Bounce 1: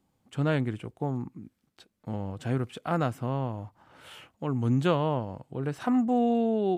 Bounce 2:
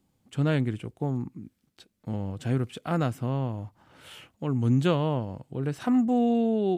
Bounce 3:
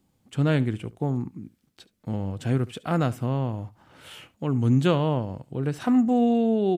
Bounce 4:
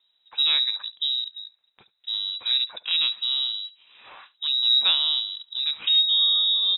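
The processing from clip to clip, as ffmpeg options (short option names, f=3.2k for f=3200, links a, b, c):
-af "equalizer=f=950:t=o:w=2.1:g=-5.5,volume=3dB"
-af "aecho=1:1:71:0.0944,volume=2.5dB"
-af "lowpass=f=3.4k:t=q:w=0.5098,lowpass=f=3.4k:t=q:w=0.6013,lowpass=f=3.4k:t=q:w=0.9,lowpass=f=3.4k:t=q:w=2.563,afreqshift=-4000"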